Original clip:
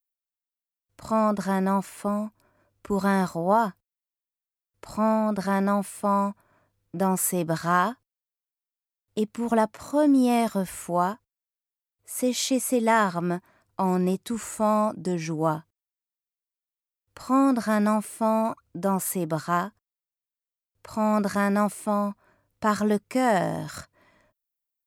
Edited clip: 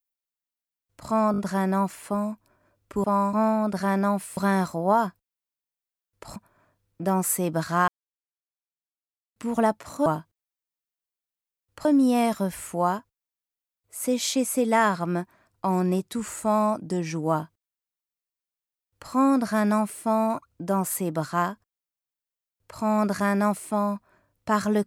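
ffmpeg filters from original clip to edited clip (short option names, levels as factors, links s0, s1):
-filter_complex "[0:a]asplit=12[s0][s1][s2][s3][s4][s5][s6][s7][s8][s9][s10][s11];[s0]atrim=end=1.342[s12];[s1]atrim=start=1.318:end=1.342[s13];[s2]atrim=start=1.318:end=1.342[s14];[s3]atrim=start=1.318:end=2.982[s15];[s4]atrim=start=6.008:end=6.302[s16];[s5]atrim=start=4.968:end=6.012[s17];[s6]atrim=start=2.978:end=4.972[s18];[s7]atrim=start=6.298:end=7.82,asetpts=PTS-STARTPTS,afade=t=out:st=1.518:d=0.004:c=hsin[s19];[s8]atrim=start=7.82:end=9.3,asetpts=PTS-STARTPTS,volume=0[s20];[s9]atrim=start=9.3:end=10.002,asetpts=PTS-STARTPTS,afade=t=in:d=0.004:c=hsin[s21];[s10]atrim=start=15.448:end=17.242[s22];[s11]atrim=start=9.998[s23];[s12][s13]acrossfade=d=0.004:c1=hsin:c2=hsin[s24];[s24][s14]acrossfade=d=0.004:c1=hsin:c2=hsin[s25];[s25][s15]acrossfade=d=0.004:c1=hsin:c2=hsin[s26];[s26][s16]acrossfade=d=0.004:c1=hsin:c2=hsin[s27];[s27][s17]acrossfade=d=0.004:c1=hsin:c2=hsin[s28];[s28][s18]acrossfade=d=0.004:c1=hsin:c2=hsin[s29];[s19][s20][s21]concat=n=3:v=0:a=1[s30];[s29][s30]acrossfade=d=0.004:c1=hsin:c2=hsin[s31];[s31][s22]acrossfade=d=0.004:c1=hsin:c2=hsin[s32];[s32][s23]acrossfade=d=0.004:c1=hsin:c2=hsin"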